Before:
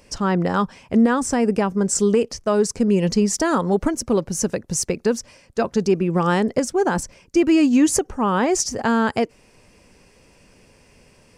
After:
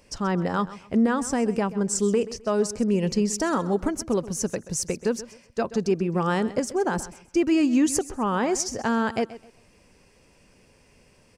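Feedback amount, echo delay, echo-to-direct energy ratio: 26%, 0.13 s, -15.5 dB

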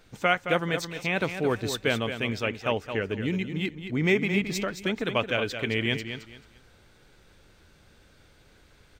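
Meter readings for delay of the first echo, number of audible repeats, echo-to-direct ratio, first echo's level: 0.219 s, 3, -8.5 dB, -9.0 dB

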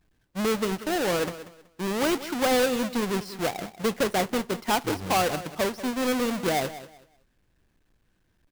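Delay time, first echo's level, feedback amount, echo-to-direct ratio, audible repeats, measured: 0.188 s, -14.5 dB, 24%, -14.5 dB, 2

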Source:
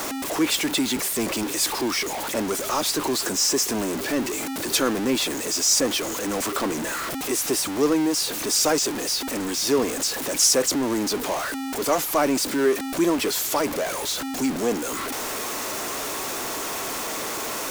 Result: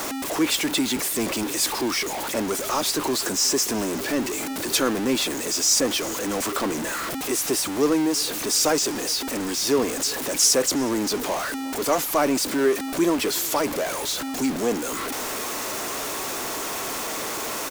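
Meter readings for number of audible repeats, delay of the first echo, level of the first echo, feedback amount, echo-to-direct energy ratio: 2, 0.363 s, -22.0 dB, 43%, -21.0 dB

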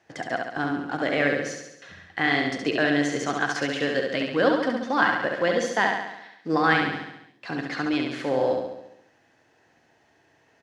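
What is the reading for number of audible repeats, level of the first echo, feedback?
7, -4.0 dB, 58%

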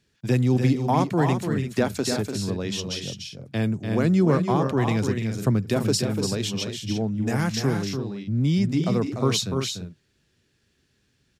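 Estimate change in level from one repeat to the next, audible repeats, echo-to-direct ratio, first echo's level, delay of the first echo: no steady repeat, 2, -4.5 dB, -6.5 dB, 0.294 s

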